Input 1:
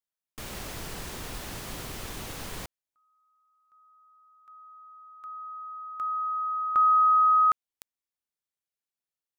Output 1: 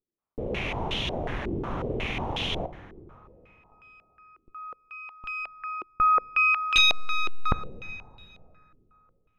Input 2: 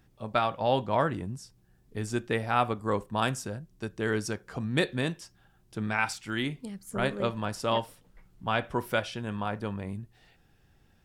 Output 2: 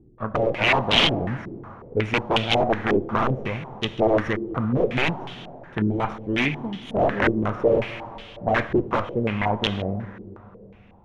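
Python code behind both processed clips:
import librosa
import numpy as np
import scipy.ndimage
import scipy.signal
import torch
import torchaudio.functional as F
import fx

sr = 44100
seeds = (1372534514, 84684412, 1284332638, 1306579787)

y = fx.lower_of_two(x, sr, delay_ms=0.32)
y = (np.mod(10.0 ** (23.0 / 20.0) * y + 1.0, 2.0) - 1.0) / 10.0 ** (23.0 / 20.0)
y = fx.rev_plate(y, sr, seeds[0], rt60_s=3.1, hf_ratio=0.65, predelay_ms=0, drr_db=11.0)
y = fx.filter_held_lowpass(y, sr, hz=5.5, low_hz=360.0, high_hz=3200.0)
y = y * librosa.db_to_amplitude(7.5)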